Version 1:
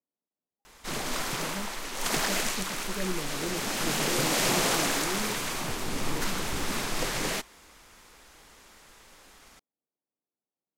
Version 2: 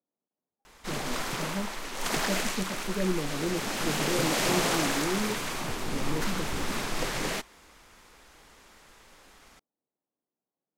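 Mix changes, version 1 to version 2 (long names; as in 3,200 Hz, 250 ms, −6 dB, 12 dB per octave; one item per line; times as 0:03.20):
speech +5.0 dB
master: add high-shelf EQ 4,500 Hz −4.5 dB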